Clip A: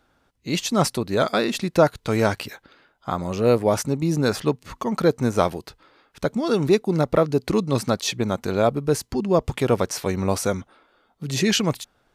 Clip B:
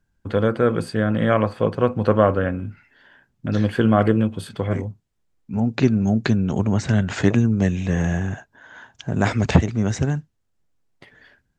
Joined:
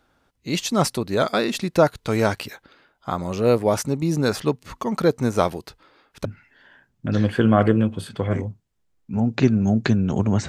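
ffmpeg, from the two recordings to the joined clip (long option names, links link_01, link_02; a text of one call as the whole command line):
ffmpeg -i cue0.wav -i cue1.wav -filter_complex "[0:a]apad=whole_dur=10.48,atrim=end=10.48,atrim=end=6.252[link_01];[1:a]atrim=start=2.648:end=6.88[link_02];[link_01][link_02]acrossfade=duration=0.004:curve1=hsin:curve2=hsin" out.wav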